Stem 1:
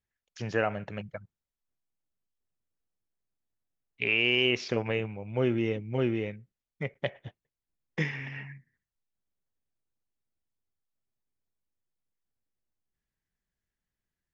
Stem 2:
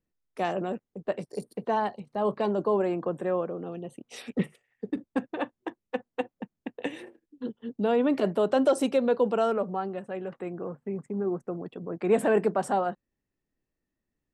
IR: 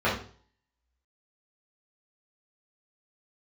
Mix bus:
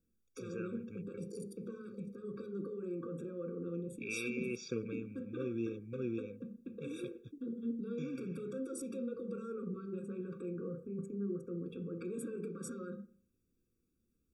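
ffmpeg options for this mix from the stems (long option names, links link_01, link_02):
-filter_complex "[0:a]equalizer=frequency=220:width=0.52:gain=8.5,volume=-13dB[link_01];[1:a]tiltshelf=frequency=650:gain=6.5,acompressor=threshold=-28dB:ratio=6,alimiter=level_in=10.5dB:limit=-24dB:level=0:latency=1:release=30,volume=-10.5dB,volume=-0.5dB,asplit=3[link_02][link_03][link_04];[link_03]volume=-18dB[link_05];[link_04]apad=whole_len=632043[link_06];[link_01][link_06]sidechaincompress=threshold=-45dB:ratio=4:attack=7.7:release=337[link_07];[2:a]atrim=start_sample=2205[link_08];[link_05][link_08]afir=irnorm=-1:irlink=0[link_09];[link_07][link_02][link_09]amix=inputs=3:normalize=0,bass=frequency=250:gain=-3,treble=frequency=4000:gain=12,bandreject=frequency=4400:width=17,afftfilt=real='re*eq(mod(floor(b*sr/1024/550),2),0)':imag='im*eq(mod(floor(b*sr/1024/550),2),0)':win_size=1024:overlap=0.75"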